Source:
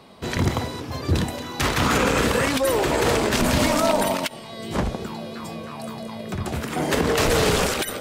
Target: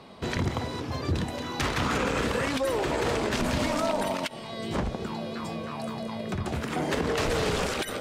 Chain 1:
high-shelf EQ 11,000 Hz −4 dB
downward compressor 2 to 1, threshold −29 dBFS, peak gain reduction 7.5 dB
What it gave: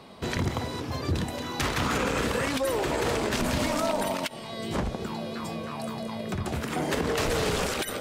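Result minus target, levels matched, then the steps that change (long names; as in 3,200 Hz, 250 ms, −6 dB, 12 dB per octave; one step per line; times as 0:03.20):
8,000 Hz band +2.5 dB
change: high-shelf EQ 11,000 Hz −15 dB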